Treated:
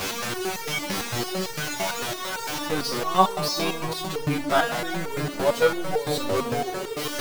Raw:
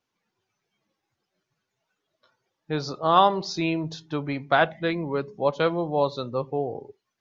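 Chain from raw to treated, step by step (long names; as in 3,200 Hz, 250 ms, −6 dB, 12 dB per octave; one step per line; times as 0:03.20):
converter with a step at zero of −19 dBFS
tape delay 166 ms, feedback 87%, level −10 dB, low-pass 1,800 Hz
step-sequenced resonator 8.9 Hz 96–460 Hz
level +7.5 dB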